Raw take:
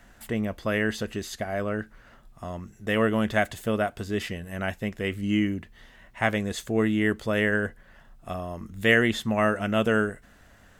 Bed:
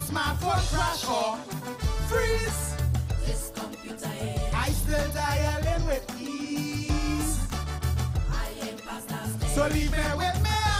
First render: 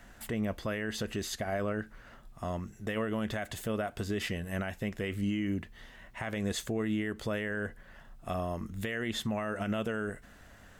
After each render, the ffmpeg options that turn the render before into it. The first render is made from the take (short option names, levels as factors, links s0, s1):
-af "acompressor=threshold=0.0562:ratio=6,alimiter=limit=0.0631:level=0:latency=1:release=60"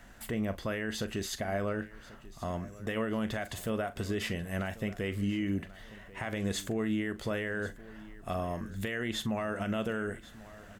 -filter_complex "[0:a]asplit=2[s0][s1];[s1]adelay=41,volume=0.2[s2];[s0][s2]amix=inputs=2:normalize=0,aecho=1:1:1089|2178|3267:0.112|0.0415|0.0154"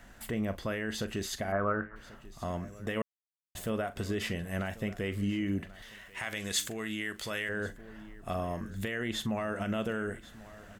-filter_complex "[0:a]asettb=1/sr,asplit=3[s0][s1][s2];[s0]atrim=end=1.524[s3];[s1]atrim=start=1.52:end=1.96,asetpts=PTS-STARTPTS,afade=t=in:d=0.004:c=qsin,afade=t=out:st=0.436:d=0.004:c=qsin,lowpass=f=1300:t=q:w=3.5[s4];[s2]atrim=start=1.956[s5];[s3][s4]acrossfade=d=0.004:c1=hsin:c2=qsin[s6];[s6][s5]acrossfade=d=0.004:c1=qsin:c2=hsin,asettb=1/sr,asplit=3[s7][s8][s9];[s7]atrim=end=5.824[s10];[s8]atrim=start=5.82:end=7.49,asetpts=PTS-STARTPTS,afade=t=in:d=0.004:c=qsin,afade=t=out:st=1.666:d=0.004:c=qsin,tiltshelf=f=1200:g=-8[s11];[s9]atrim=start=7.486[s12];[s10][s11]acrossfade=d=0.004:c1=hsin:c2=qsin[s13];[s13][s12]acrossfade=d=0.004:c1=qsin:c2=hsin,asplit=3[s14][s15][s16];[s14]atrim=end=3.02,asetpts=PTS-STARTPTS,afade=t=out:st=3.016:d=0.004:c=hsin[s17];[s15]atrim=start=3.02:end=3.55,asetpts=PTS-STARTPTS,volume=0[s18];[s16]atrim=start=3.55,asetpts=PTS-STARTPTS,afade=t=in:d=0.004:c=hsin[s19];[s17][s18][s19]concat=n=3:v=0:a=1"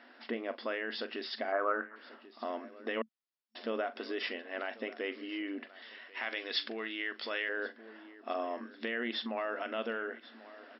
-af "afftfilt=real='re*between(b*sr/4096,220,5500)':imag='im*between(b*sr/4096,220,5500)':win_size=4096:overlap=0.75,adynamicequalizer=threshold=0.00398:dfrequency=330:dqfactor=1.7:tfrequency=330:tqfactor=1.7:attack=5:release=100:ratio=0.375:range=3:mode=cutabove:tftype=bell"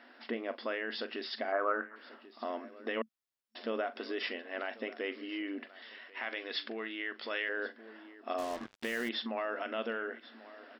-filter_complex "[0:a]asettb=1/sr,asplit=3[s0][s1][s2];[s0]atrim=end=6.104[s3];[s1]atrim=start=6.1:end=7.3,asetpts=PTS-STARTPTS,afade=t=in:d=0.004:c=qsin,afade=t=out:st=1.196:d=0.004:c=qsin,highshelf=f=4700:g=-10[s4];[s2]atrim=start=7.296[s5];[s3][s4]acrossfade=d=0.004:c1=hsin:c2=qsin[s6];[s6][s5]acrossfade=d=0.004:c1=qsin:c2=hsin,asettb=1/sr,asplit=3[s7][s8][s9];[s7]atrim=end=8.384[s10];[s8]atrim=start=8.38:end=9.09,asetpts=PTS-STARTPTS,afade=t=in:d=0.004:c=qsin,afade=t=out:st=0.706:d=0.004:c=qsin,acrusher=bits=6:mix=0:aa=0.5[s11];[s9]atrim=start=9.086[s12];[s10][s11]acrossfade=d=0.004:c1=hsin:c2=qsin[s13];[s13][s12]acrossfade=d=0.004:c1=qsin:c2=hsin"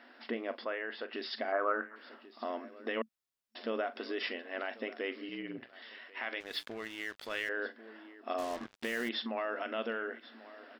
-filter_complex "[0:a]asplit=3[s0][s1][s2];[s0]afade=t=out:st=0.64:d=0.02[s3];[s1]highpass=360,lowpass=2400,afade=t=in:st=0.64:d=0.02,afade=t=out:st=1.12:d=0.02[s4];[s2]afade=t=in:st=1.12:d=0.02[s5];[s3][s4][s5]amix=inputs=3:normalize=0,asettb=1/sr,asplit=3[s6][s7][s8];[s6]atrim=end=5.294[s9];[s7]atrim=start=5.29:end=5.73,asetpts=PTS-STARTPTS,afade=t=in:d=0.004:c=qsin,afade=t=out:st=0.436:d=0.004:c=qsin,tremolo=f=120:d=0.788[s10];[s8]atrim=start=5.726[s11];[s9][s10]acrossfade=d=0.004:c1=hsin:c2=qsin[s12];[s12][s11]acrossfade=d=0.004:c1=qsin:c2=hsin,asettb=1/sr,asplit=3[s13][s14][s15];[s13]atrim=end=6.404[s16];[s14]atrim=start=6.4:end=7.49,asetpts=PTS-STARTPTS,afade=t=in:d=0.004:c=qsin,afade=t=out:st=1.086:d=0.004:c=qsin,aeval=exprs='sgn(val(0))*max(abs(val(0))-0.00398,0)':c=same[s17];[s15]atrim=start=7.486[s18];[s16][s17]acrossfade=d=0.004:c1=hsin:c2=qsin[s19];[s19][s18]acrossfade=d=0.004:c1=qsin:c2=hsin"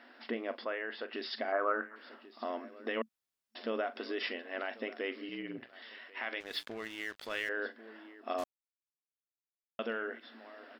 -filter_complex "[0:a]asplit=3[s0][s1][s2];[s0]atrim=end=8.44,asetpts=PTS-STARTPTS,afade=t=out:st=8.436:d=0.004:c=hsin[s3];[s1]atrim=start=8.44:end=9.79,asetpts=PTS-STARTPTS,volume=0[s4];[s2]atrim=start=9.79,asetpts=PTS-STARTPTS,afade=t=in:d=0.004:c=hsin[s5];[s3][s4][s5]concat=n=3:v=0:a=1"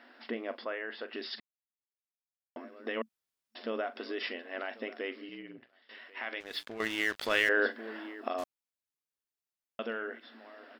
-filter_complex "[0:a]asplit=6[s0][s1][s2][s3][s4][s5];[s0]atrim=end=1.4,asetpts=PTS-STARTPTS,afade=t=out:st=1.396:d=0.004:c=hsin[s6];[s1]atrim=start=1.4:end=2.56,asetpts=PTS-STARTPTS,volume=0[s7];[s2]atrim=start=2.56:end=5.89,asetpts=PTS-STARTPTS,afade=t=in:d=0.004:c=hsin,afade=t=out:st=2.46:d=0.87:silence=0.0944061[s8];[s3]atrim=start=5.89:end=6.802,asetpts=PTS-STARTPTS,afade=t=in:d=0.004:c=hsin:silence=0.0944061[s9];[s4]atrim=start=6.798:end=8.282,asetpts=PTS-STARTPTS,volume=2.99[s10];[s5]atrim=start=8.278[s11];[s6][s7][s8][s9]concat=n=4:v=0:a=1[s12];[s12][s10]acrossfade=d=0.004:c1=hsin:c2=hsin[s13];[s13][s11]acrossfade=d=0.004:c1=hsin:c2=hsin"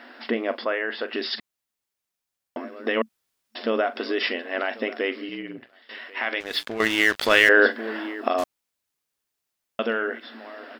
-af "volume=3.76,alimiter=limit=0.794:level=0:latency=1"